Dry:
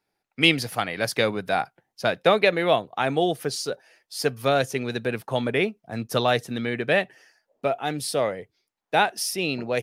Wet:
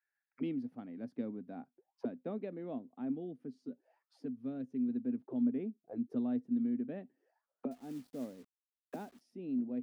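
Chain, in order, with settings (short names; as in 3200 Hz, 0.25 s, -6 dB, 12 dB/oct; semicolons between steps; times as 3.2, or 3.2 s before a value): auto-wah 250–1700 Hz, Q 12, down, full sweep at -26.5 dBFS; 3.14–4.89 dynamic EQ 770 Hz, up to -7 dB, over -58 dBFS, Q 0.91; 7.71–9.21 companded quantiser 6-bit; gain +2.5 dB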